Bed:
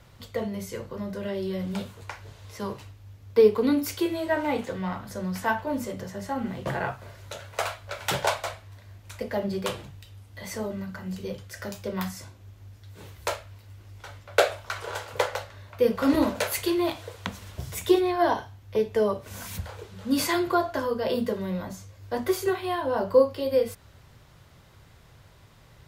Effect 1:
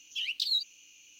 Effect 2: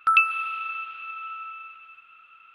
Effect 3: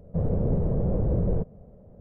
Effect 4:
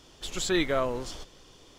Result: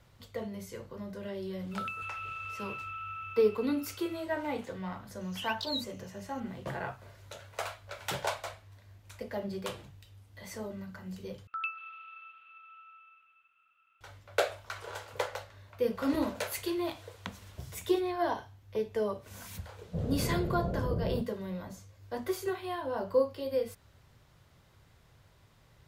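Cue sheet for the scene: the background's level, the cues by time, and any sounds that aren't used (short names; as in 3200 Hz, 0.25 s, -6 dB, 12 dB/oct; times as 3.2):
bed -8 dB
1.71 add 2 -3 dB + compressor, threshold -34 dBFS
5.21 add 1 -7.5 dB
11.47 replace with 2 -17.5 dB + polynomial smoothing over 15 samples
19.79 add 3 -7.5 dB + HPF 52 Hz
not used: 4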